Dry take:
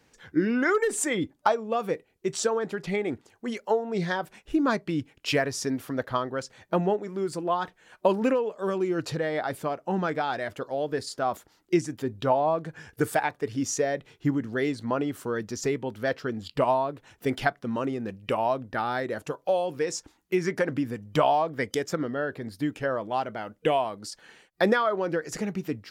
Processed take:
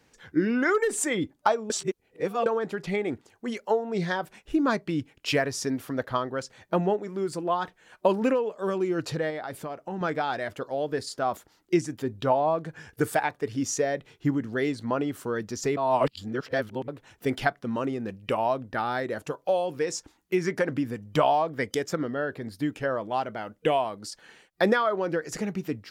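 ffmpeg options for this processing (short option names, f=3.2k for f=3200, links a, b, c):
-filter_complex "[0:a]asettb=1/sr,asplit=3[a][b][c];[a]atrim=end=9.304[d];[b]atrim=start=9.3:end=10.01,asetpts=PTS-STARTPTS,afade=t=in:d=0.004:c=qsin,afade=t=out:st=0.706:d=0.004:c=qsin,acompressor=threshold=-32dB:ratio=3:attack=3.2:release=140:knee=1:detection=peak[e];[c]atrim=start=10.006[f];[d][e]acrossfade=d=0.004:c1=hsin:c2=qsin[g];[g][f]acrossfade=d=0.004:c1=qsin:c2=hsin,asplit=5[h][i][j][k][l];[h]atrim=end=1.702[m];[i]atrim=start=1.698:end=2.462,asetpts=PTS-STARTPTS,areverse[n];[j]atrim=start=2.458:end=15.772[o];[k]atrim=start=15.768:end=16.882,asetpts=PTS-STARTPTS,areverse[p];[l]atrim=start=16.878[q];[m][n]acrossfade=d=0.004:c1=hsin:c2=hsin[r];[r][o]acrossfade=d=0.004:c1=hsin:c2=hsin[s];[s][p]acrossfade=d=0.004:c1=hsin:c2=hsin[t];[t][q]acrossfade=d=0.004:c1=hsin:c2=hsin"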